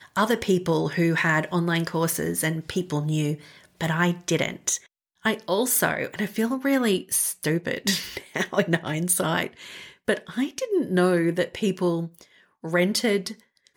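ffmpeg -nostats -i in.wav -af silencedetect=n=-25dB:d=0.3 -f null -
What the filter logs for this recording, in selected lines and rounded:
silence_start: 3.34
silence_end: 3.81 | silence_duration: 0.47
silence_start: 4.76
silence_end: 5.25 | silence_duration: 0.50
silence_start: 9.47
silence_end: 10.08 | silence_duration: 0.62
silence_start: 12.05
silence_end: 12.65 | silence_duration: 0.60
silence_start: 13.28
silence_end: 13.77 | silence_duration: 0.49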